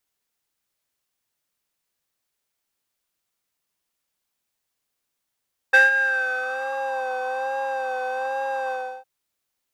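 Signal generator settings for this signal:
subtractive patch with vibrato C5, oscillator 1 square, oscillator 2 sine, interval +7 semitones, oscillator 2 level −5 dB, sub −21 dB, noise −9 dB, filter bandpass, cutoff 900 Hz, Q 7, filter envelope 1 octave, filter decay 1.13 s, filter sustain 20%, attack 13 ms, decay 0.16 s, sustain −13.5 dB, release 0.33 s, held 2.98 s, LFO 1.2 Hz, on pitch 46 cents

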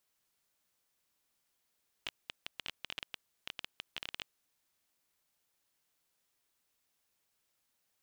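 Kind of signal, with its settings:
Geiger counter clicks 13 per second −21.5 dBFS 2.21 s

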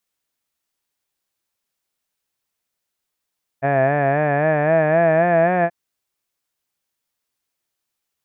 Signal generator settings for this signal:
vowel by formant synthesis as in had, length 2.08 s, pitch 134 Hz, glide +5 semitones, vibrato 3.8 Hz, vibrato depth 0.8 semitones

